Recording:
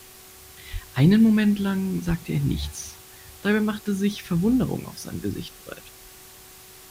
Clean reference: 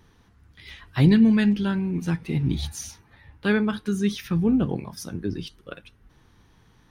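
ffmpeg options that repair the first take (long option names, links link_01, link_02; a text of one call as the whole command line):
ffmpeg -i in.wav -filter_complex "[0:a]bandreject=frequency=374.8:width_type=h:width=4,bandreject=frequency=749.6:width_type=h:width=4,bandreject=frequency=1124.4:width_type=h:width=4,asplit=3[link_01][link_02][link_03];[link_01]afade=type=out:start_time=0.72:duration=0.02[link_04];[link_02]highpass=frequency=140:width=0.5412,highpass=frequency=140:width=1.3066,afade=type=in:start_time=0.72:duration=0.02,afade=type=out:start_time=0.84:duration=0.02[link_05];[link_03]afade=type=in:start_time=0.84:duration=0.02[link_06];[link_04][link_05][link_06]amix=inputs=3:normalize=0,asplit=3[link_07][link_08][link_09];[link_07]afade=type=out:start_time=2.07:duration=0.02[link_10];[link_08]highpass=frequency=140:width=0.5412,highpass=frequency=140:width=1.3066,afade=type=in:start_time=2.07:duration=0.02,afade=type=out:start_time=2.19:duration=0.02[link_11];[link_09]afade=type=in:start_time=2.19:duration=0.02[link_12];[link_10][link_11][link_12]amix=inputs=3:normalize=0,afwtdn=0.005" out.wav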